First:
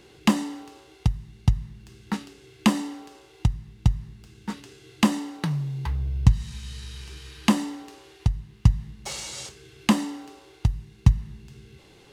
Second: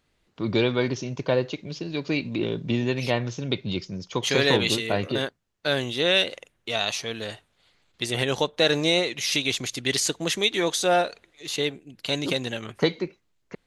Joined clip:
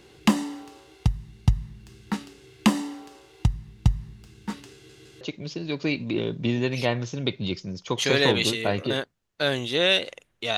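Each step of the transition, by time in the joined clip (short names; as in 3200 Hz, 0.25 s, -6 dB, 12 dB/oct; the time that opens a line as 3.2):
first
4.73 stutter in place 0.16 s, 3 plays
5.21 switch to second from 1.46 s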